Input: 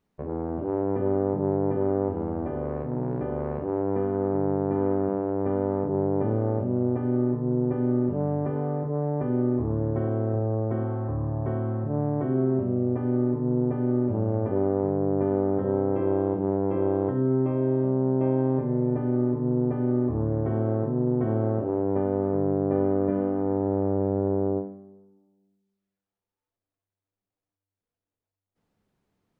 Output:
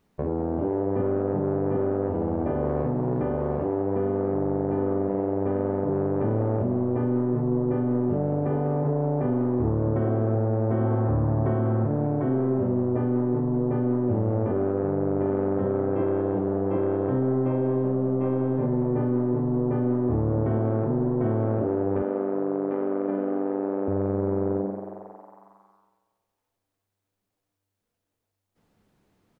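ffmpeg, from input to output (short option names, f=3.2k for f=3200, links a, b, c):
-filter_complex "[0:a]asoftclip=type=tanh:threshold=-17dB,asettb=1/sr,asplit=3[a][b][c];[a]atrim=end=22.024[d];[b]atrim=start=22.02:end=23.88,asetpts=PTS-STARTPTS,afade=t=in:d=0.004:c=qsin,afade=t=out:st=1.856:d=0.004:c=qsin,highpass=f=210:w=0.5412,highpass=f=210:w=1.3066[e];[c]atrim=start=23.876[f];[d][e]acrossfade=d=0.004:c1=hsin:c2=qsin[g];[g][f]acrossfade=d=0.004:c1=qsin:c2=hsin,alimiter=level_in=1dB:limit=-24dB:level=0:latency=1:release=84,volume=-1dB,asplit=7[h][i][j][k][l][m][n];[i]adelay=194,afreqshift=120,volume=-13.5dB[o];[j]adelay=388,afreqshift=240,volume=-18.5dB[p];[k]adelay=582,afreqshift=360,volume=-23.6dB[q];[l]adelay=776,afreqshift=480,volume=-28.6dB[r];[m]adelay=970,afreqshift=600,volume=-33.6dB[s];[n]adelay=1164,afreqshift=720,volume=-38.7dB[t];[h][o][p][q][r][s][t]amix=inputs=7:normalize=0,volume=8dB"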